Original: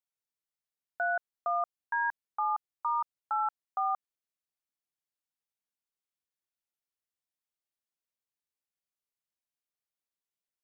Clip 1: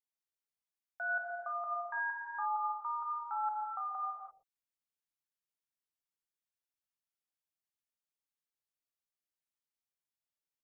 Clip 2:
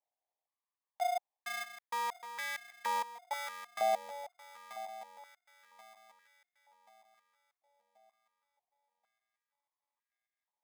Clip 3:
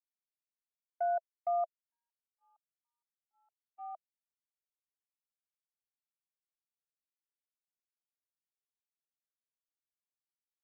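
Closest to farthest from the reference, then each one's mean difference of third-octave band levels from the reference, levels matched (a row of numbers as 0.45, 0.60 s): 1, 3, 2; 2.5, 5.0, 18.5 dB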